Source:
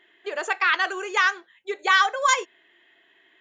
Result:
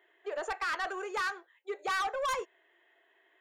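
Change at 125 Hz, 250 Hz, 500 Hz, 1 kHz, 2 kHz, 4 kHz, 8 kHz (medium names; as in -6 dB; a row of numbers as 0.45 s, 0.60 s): no reading, -7.5 dB, -5.5 dB, -10.5 dB, -13.5 dB, -14.5 dB, -14.5 dB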